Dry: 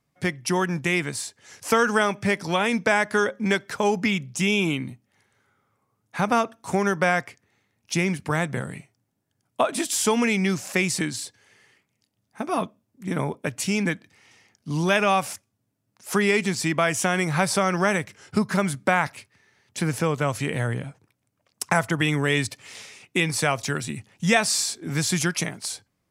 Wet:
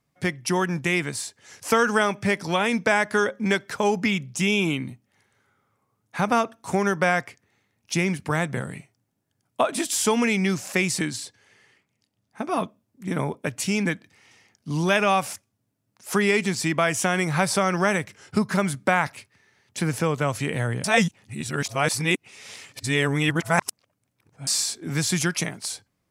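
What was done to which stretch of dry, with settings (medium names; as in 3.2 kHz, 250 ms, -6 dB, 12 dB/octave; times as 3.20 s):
11.17–12.57 s: treble shelf 10 kHz -7 dB
20.84–24.47 s: reverse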